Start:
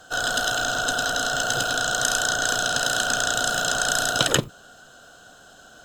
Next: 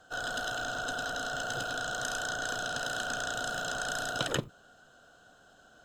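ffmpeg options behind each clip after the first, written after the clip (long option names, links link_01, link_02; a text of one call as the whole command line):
ffmpeg -i in.wav -af "highshelf=frequency=3700:gain=-8,volume=-9dB" out.wav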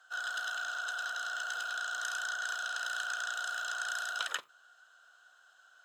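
ffmpeg -i in.wav -af "highpass=frequency=1300:width_type=q:width=1.5,volume=-4dB" out.wav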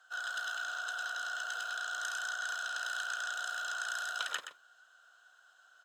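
ffmpeg -i in.wav -af "aecho=1:1:123:0.316,volume=-1.5dB" out.wav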